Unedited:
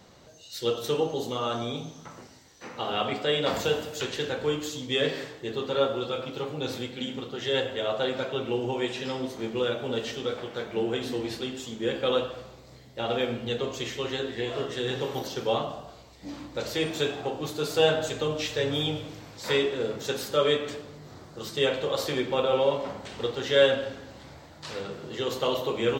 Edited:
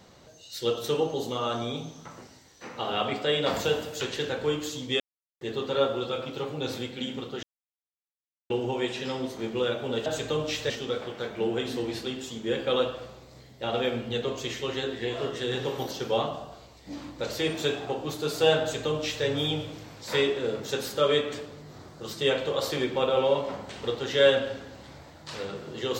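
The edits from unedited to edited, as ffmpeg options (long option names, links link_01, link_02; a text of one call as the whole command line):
ffmpeg -i in.wav -filter_complex "[0:a]asplit=7[link_01][link_02][link_03][link_04][link_05][link_06][link_07];[link_01]atrim=end=5,asetpts=PTS-STARTPTS,afade=type=out:start_time=4.996:duration=0.004:curve=hsin[link_08];[link_02]atrim=start=5:end=5.41,asetpts=PTS-STARTPTS,volume=0[link_09];[link_03]atrim=start=5.41:end=7.43,asetpts=PTS-STARTPTS,afade=type=in:duration=0.004:curve=hsin,afade=type=out:start_time=2.016:duration=0.004:curve=hsin[link_10];[link_04]atrim=start=7.43:end=8.5,asetpts=PTS-STARTPTS,volume=0[link_11];[link_05]atrim=start=8.5:end=10.062,asetpts=PTS-STARTPTS,afade=type=in:duration=0.004:curve=hsin[link_12];[link_06]atrim=start=17.968:end=18.612[link_13];[link_07]atrim=start=10.058[link_14];[link_08][link_09][link_10][link_11][link_12]concat=n=5:v=0:a=1[link_15];[link_15][link_13]acrossfade=duration=0.004:curve1=hsin:curve2=hsin[link_16];[link_16][link_14]acrossfade=duration=0.004:curve1=hsin:curve2=hsin" out.wav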